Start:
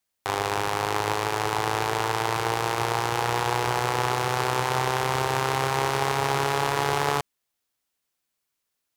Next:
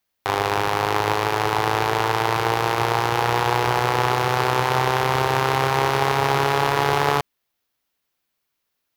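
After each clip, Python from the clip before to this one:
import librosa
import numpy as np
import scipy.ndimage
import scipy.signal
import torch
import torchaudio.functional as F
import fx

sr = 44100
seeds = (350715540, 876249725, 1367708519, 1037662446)

y = fx.peak_eq(x, sr, hz=8300.0, db=-8.0, octaves=0.93)
y = y * 10.0 ** (5.0 / 20.0)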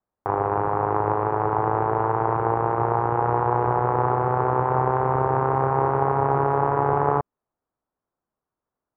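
y = scipy.signal.sosfilt(scipy.signal.butter(4, 1200.0, 'lowpass', fs=sr, output='sos'), x)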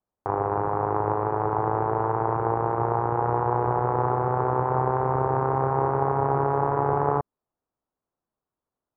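y = fx.high_shelf(x, sr, hz=2600.0, db=-11.0)
y = y * 10.0 ** (-1.5 / 20.0)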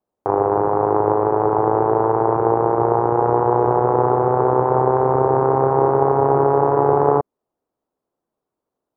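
y = fx.peak_eq(x, sr, hz=420.0, db=11.5, octaves=2.6)
y = y * 10.0 ** (-1.0 / 20.0)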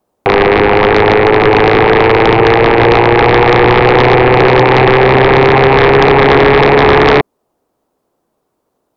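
y = fx.fold_sine(x, sr, drive_db=13, ceiling_db=-1.0)
y = y * 10.0 ** (-1.0 / 20.0)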